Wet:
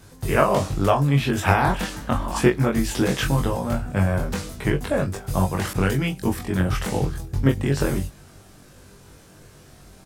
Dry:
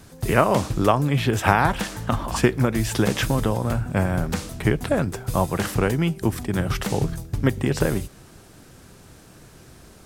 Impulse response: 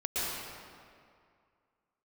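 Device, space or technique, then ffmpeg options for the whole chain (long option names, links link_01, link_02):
double-tracked vocal: -filter_complex "[0:a]asplit=2[link_01][link_02];[link_02]adelay=22,volume=-7dB[link_03];[link_01][link_03]amix=inputs=2:normalize=0,flanger=delay=20:depth=2.1:speed=0.22,asettb=1/sr,asplit=3[link_04][link_05][link_06];[link_04]atrim=end=5.734[link_07];[link_05]atrim=start=5.73:end=6.36,asetpts=PTS-STARTPTS,afade=type=in:duration=0.004:curve=qsin,afade=type=out:start_time=0.626:duration=0.004:curve=qsin,adynamicequalizer=threshold=0.0126:dfrequency=1700:dqfactor=0.7:tfrequency=1700:tqfactor=0.7:attack=5:release=100:ratio=0.375:range=1.5:mode=boostabove:tftype=highshelf[link_08];[link_06]atrim=start=6.356[link_09];[link_07][link_08]acrossfade=duration=0.004:curve1=hsin:curve2=qsin[link_10];[link_10][link_09]acrossfade=duration=0.004:curve1=qsin:curve2=hsin,volume=1.5dB"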